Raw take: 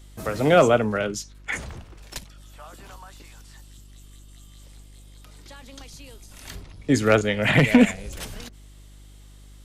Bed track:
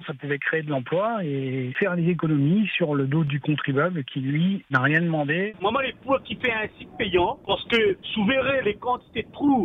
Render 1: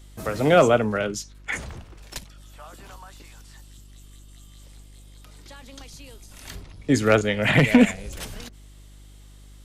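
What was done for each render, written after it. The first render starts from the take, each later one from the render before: no audible change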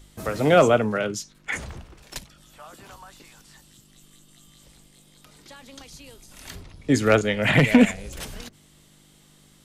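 de-hum 50 Hz, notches 2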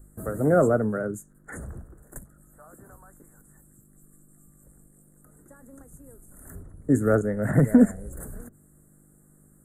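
inverse Chebyshev band-stop 2.3–5.7 kHz, stop band 40 dB; peaking EQ 940 Hz -12 dB 0.94 oct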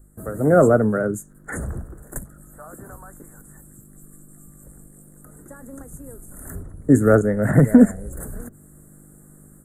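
level rider gain up to 9.5 dB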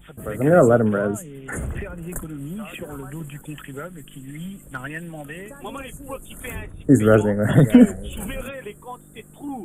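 add bed track -12 dB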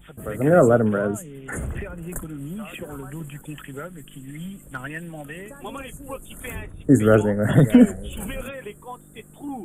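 trim -1 dB; peak limiter -3 dBFS, peak gain reduction 1 dB

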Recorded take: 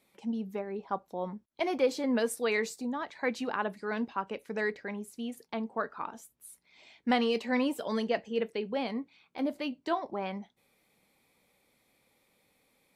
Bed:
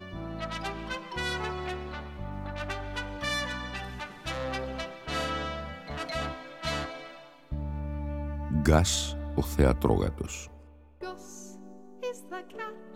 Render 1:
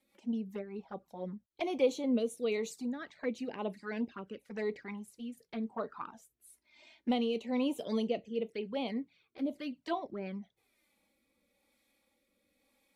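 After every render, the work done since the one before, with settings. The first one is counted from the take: touch-sensitive flanger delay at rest 3.7 ms, full sweep at -28.5 dBFS; rotary cabinet horn 5 Hz, later 1 Hz, at 0.48 s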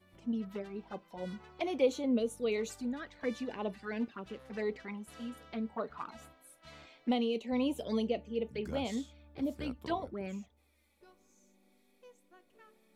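add bed -22.5 dB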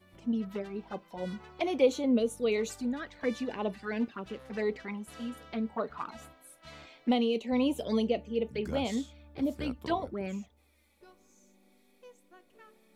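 trim +4 dB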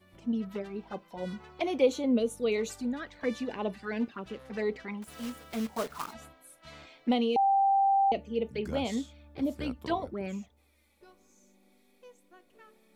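5.02–6.14 s: block-companded coder 3-bit; 7.36–8.12 s: bleep 786 Hz -21 dBFS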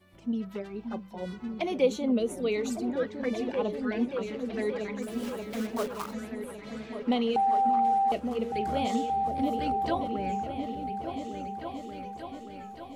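delay with an opening low-pass 579 ms, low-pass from 200 Hz, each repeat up 2 oct, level -3 dB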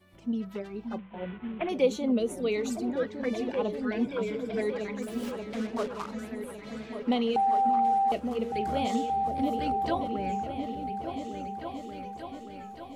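0.98–1.69 s: CVSD coder 16 kbps; 4.04–4.61 s: rippled EQ curve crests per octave 1.7, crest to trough 11 dB; 5.31–6.19 s: distance through air 64 m

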